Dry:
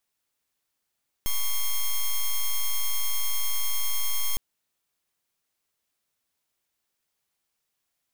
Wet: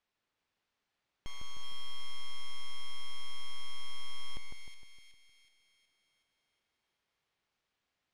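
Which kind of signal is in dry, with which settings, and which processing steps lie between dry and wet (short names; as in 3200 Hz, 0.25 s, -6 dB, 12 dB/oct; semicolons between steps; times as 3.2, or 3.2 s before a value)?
pulse 3230 Hz, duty 5% -23.5 dBFS 3.11 s
LPF 3600 Hz 12 dB/oct; limiter -34 dBFS; split-band echo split 1900 Hz, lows 0.154 s, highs 0.371 s, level -4 dB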